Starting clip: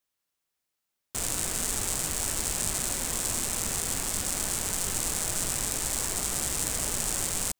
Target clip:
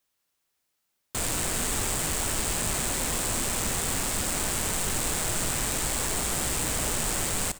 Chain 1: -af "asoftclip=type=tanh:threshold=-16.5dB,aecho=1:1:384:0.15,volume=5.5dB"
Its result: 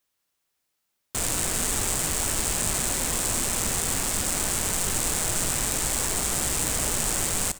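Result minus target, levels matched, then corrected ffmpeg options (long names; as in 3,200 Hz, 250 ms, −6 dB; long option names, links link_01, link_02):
soft clipping: distortion −7 dB
-af "asoftclip=type=tanh:threshold=-23.5dB,aecho=1:1:384:0.15,volume=5.5dB"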